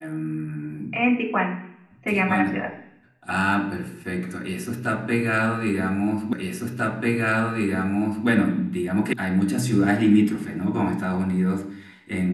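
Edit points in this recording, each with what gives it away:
6.33 repeat of the last 1.94 s
9.13 sound cut off

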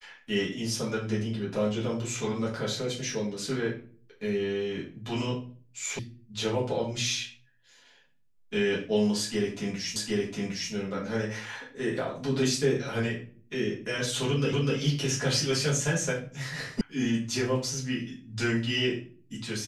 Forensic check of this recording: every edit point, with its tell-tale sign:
5.99 sound cut off
9.96 repeat of the last 0.76 s
14.53 repeat of the last 0.25 s
16.81 sound cut off

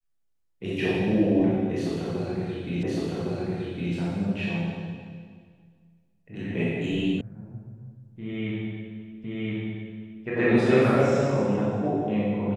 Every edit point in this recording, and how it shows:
2.83 repeat of the last 1.11 s
7.21 sound cut off
9.24 repeat of the last 1.02 s

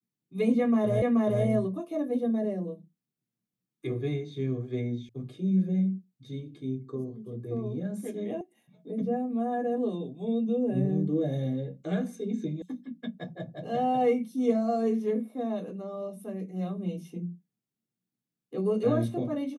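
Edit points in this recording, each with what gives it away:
1.02 repeat of the last 0.43 s
5.09 sound cut off
8.41 sound cut off
12.62 sound cut off

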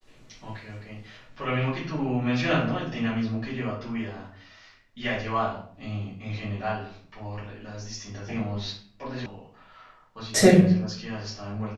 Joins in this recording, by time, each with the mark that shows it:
9.26 sound cut off

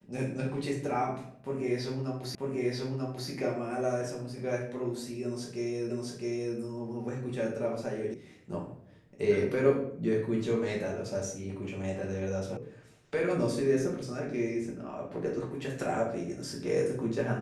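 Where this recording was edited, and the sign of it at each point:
2.35 repeat of the last 0.94 s
5.9 repeat of the last 0.66 s
8.14 sound cut off
12.57 sound cut off

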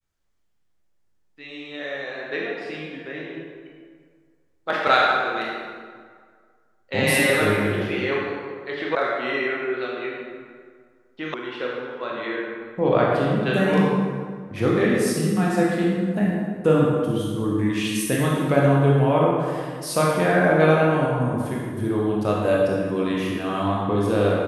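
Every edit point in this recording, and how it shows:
8.95 sound cut off
11.34 sound cut off

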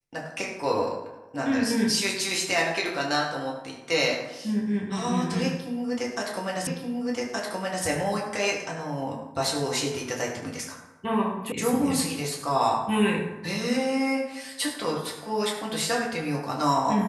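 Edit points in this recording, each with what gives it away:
6.67 repeat of the last 1.17 s
11.52 sound cut off

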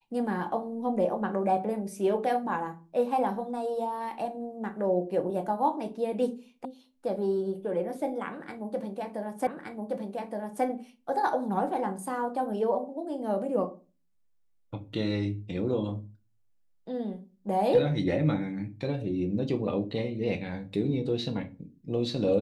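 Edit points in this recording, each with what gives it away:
6.65 sound cut off
9.47 repeat of the last 1.17 s

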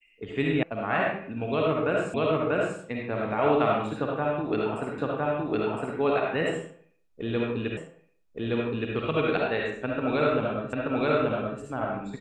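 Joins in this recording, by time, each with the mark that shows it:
0.63 sound cut off
2.14 repeat of the last 0.64 s
4.98 repeat of the last 1.01 s
7.77 repeat of the last 1.17 s
10.73 repeat of the last 0.88 s

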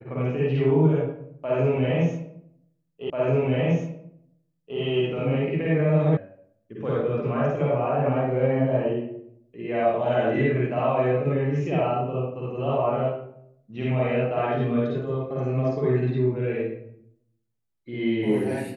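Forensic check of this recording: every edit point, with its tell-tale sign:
3.1 repeat of the last 1.69 s
6.17 sound cut off

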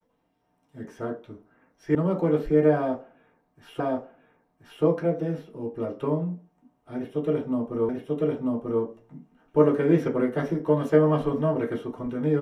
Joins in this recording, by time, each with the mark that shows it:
1.95 sound cut off
3.8 repeat of the last 1.03 s
7.89 repeat of the last 0.94 s

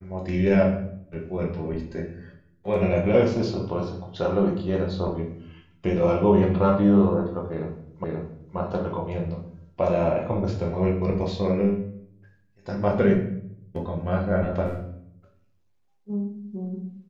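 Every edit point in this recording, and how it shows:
8.04 repeat of the last 0.53 s

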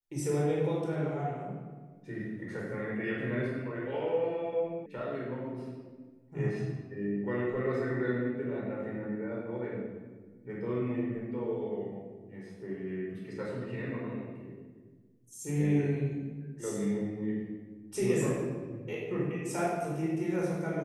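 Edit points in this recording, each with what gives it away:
4.86 sound cut off

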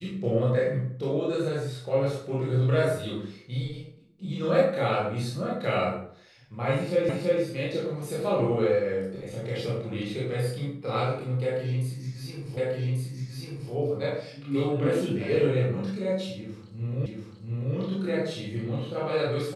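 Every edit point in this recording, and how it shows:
7.09 repeat of the last 0.33 s
12.57 repeat of the last 1.14 s
17.06 repeat of the last 0.69 s

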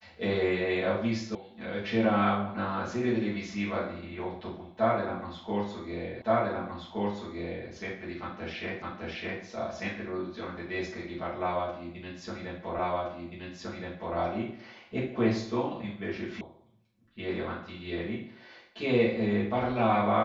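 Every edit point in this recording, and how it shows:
1.35 sound cut off
6.22 repeat of the last 1.47 s
8.82 repeat of the last 0.61 s
12.79 repeat of the last 1.37 s
16.41 sound cut off

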